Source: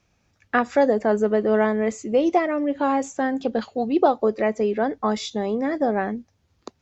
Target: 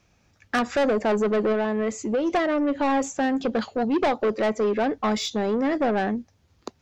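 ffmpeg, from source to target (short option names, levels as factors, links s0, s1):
-filter_complex "[0:a]asettb=1/sr,asplit=3[s0][s1][s2];[s0]atrim=end=1.524[s3];[s1]atrim=start=1.52:end=2.3,asetpts=PTS-STARTPTS,afade=t=in:d=0.004:c=qsin,afade=t=out:st=0.776:d=0.004:c=qsin,acompressor=threshold=0.0631:ratio=2.5[s4];[s2]atrim=start=2.296[s5];[s3][s4]acrossfade=d=0.004:c1=hsin:c2=qsin[s6];[s6][s5]acrossfade=d=0.004:c1=qsin:c2=hsin,asoftclip=type=tanh:threshold=0.0841,volume=1.5"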